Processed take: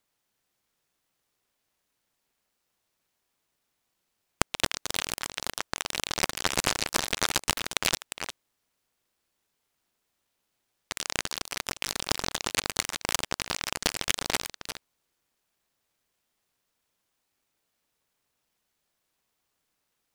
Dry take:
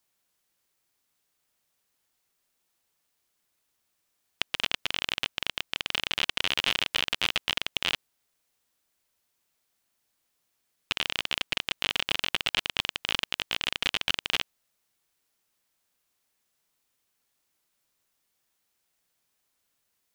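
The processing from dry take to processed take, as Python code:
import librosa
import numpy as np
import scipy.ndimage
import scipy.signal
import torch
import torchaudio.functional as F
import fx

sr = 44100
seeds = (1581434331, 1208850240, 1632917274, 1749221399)

y = fx.level_steps(x, sr, step_db=9)
y = y + 10.0 ** (-9.5 / 20.0) * np.pad(y, (int(354 * sr / 1000.0), 0))[:len(y)]
y = fx.noise_mod_delay(y, sr, seeds[0], noise_hz=1300.0, depth_ms=0.13)
y = F.gain(torch.from_numpy(y), 3.0).numpy()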